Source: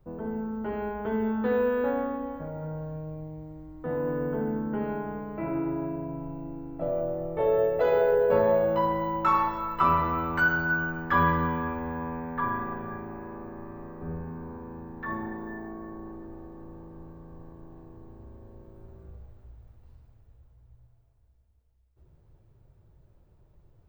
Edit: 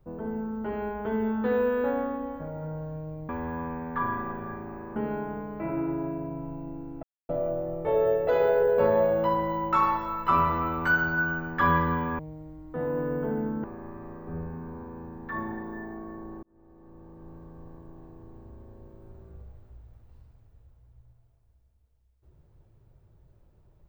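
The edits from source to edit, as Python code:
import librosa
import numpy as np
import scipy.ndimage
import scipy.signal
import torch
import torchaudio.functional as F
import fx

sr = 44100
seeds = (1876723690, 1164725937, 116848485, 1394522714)

y = fx.edit(x, sr, fx.swap(start_s=3.29, length_s=1.45, other_s=11.71, other_length_s=1.67),
    fx.insert_silence(at_s=6.81, length_s=0.26),
    fx.fade_in_span(start_s=16.17, length_s=0.97), tone=tone)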